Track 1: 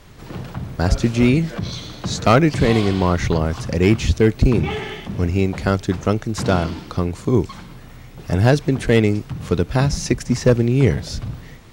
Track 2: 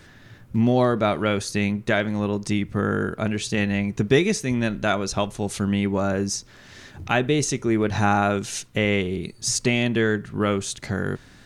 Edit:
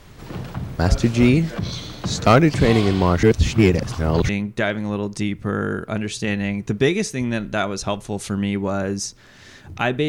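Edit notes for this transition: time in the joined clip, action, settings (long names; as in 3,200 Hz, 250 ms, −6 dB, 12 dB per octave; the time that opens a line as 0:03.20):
track 1
0:03.23–0:04.29: reverse
0:04.29: continue with track 2 from 0:01.59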